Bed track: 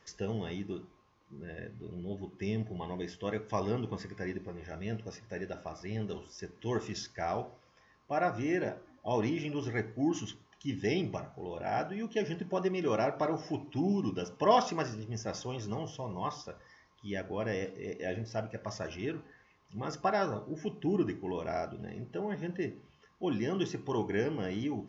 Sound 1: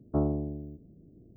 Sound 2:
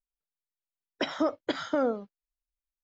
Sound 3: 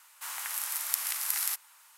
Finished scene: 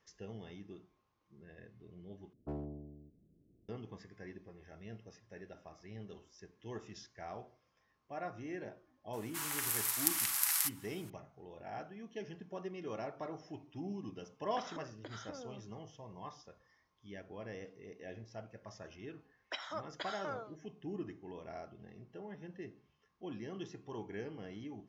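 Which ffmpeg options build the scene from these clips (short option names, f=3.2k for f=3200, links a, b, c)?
-filter_complex "[2:a]asplit=2[a][b];[0:a]volume=-12dB[c];[1:a]aeval=exprs='clip(val(0),-1,0.0668)':c=same[d];[3:a]aecho=1:1:6.1:0.38[e];[a]acompressor=threshold=-38dB:ratio=6:attack=3.2:release=140:knee=1:detection=peak[f];[b]highpass=910[g];[c]asplit=2[h][i];[h]atrim=end=2.334[j];[d]atrim=end=1.36,asetpts=PTS-STARTPTS,volume=-14dB[k];[i]atrim=start=3.686[l];[e]atrim=end=1.97,asetpts=PTS-STARTPTS,volume=-2dB,afade=t=in:d=0.004:c=hsin,afade=t=out:st=1.966:d=0.004:c=hsin,adelay=9130[m];[f]atrim=end=2.83,asetpts=PTS-STARTPTS,volume=-7.5dB,afade=t=in:d=0.004:c=hsin,afade=t=out:st=2.826:d=0.004:c=hsin,adelay=13560[n];[g]atrim=end=2.83,asetpts=PTS-STARTPTS,volume=-7.5dB,afade=t=in:d=0.004:c=hsin,afade=t=out:st=2.826:d=0.004:c=hsin,adelay=18510[o];[j][k]acrossfade=d=0.004:c1=hsin:c2=hsin[p];[p][l]acrossfade=d=0.004:c1=hsin:c2=hsin[q];[q][m][n][o]amix=inputs=4:normalize=0"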